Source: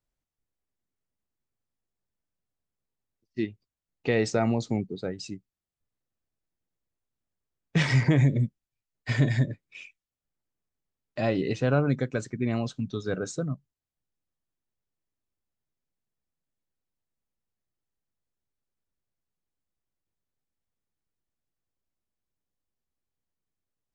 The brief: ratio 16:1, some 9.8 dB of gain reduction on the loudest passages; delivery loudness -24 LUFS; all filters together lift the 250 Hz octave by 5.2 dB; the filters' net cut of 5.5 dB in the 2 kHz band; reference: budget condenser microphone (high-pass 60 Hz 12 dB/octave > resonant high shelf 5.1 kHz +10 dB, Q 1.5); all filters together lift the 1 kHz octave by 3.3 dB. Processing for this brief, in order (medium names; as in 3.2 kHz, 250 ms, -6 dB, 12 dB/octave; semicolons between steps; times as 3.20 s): peaking EQ 250 Hz +6.5 dB; peaking EQ 1 kHz +6.5 dB; peaking EQ 2 kHz -7.5 dB; compression 16:1, threshold -24 dBFS; high-pass 60 Hz 12 dB/octave; resonant high shelf 5.1 kHz +10 dB, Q 1.5; trim +7.5 dB